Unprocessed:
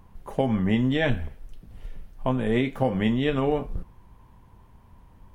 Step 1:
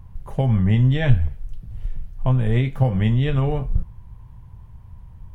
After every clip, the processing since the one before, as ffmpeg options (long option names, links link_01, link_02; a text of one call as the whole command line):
ffmpeg -i in.wav -af "lowshelf=frequency=180:width_type=q:width=1.5:gain=11.5,volume=-1dB" out.wav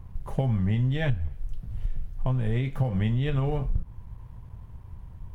ffmpeg -i in.wav -af "acompressor=threshold=-22dB:ratio=5,aeval=exprs='sgn(val(0))*max(abs(val(0))-0.00158,0)':channel_layout=same" out.wav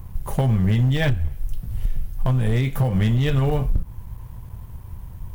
ffmpeg -i in.wav -af "aemphasis=mode=production:type=50fm,asoftclip=type=hard:threshold=-20.5dB,volume=7dB" out.wav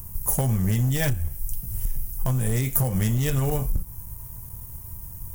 ffmpeg -i in.wav -af "aexciter=amount=8.8:drive=4.7:freq=5500,volume=-4dB" out.wav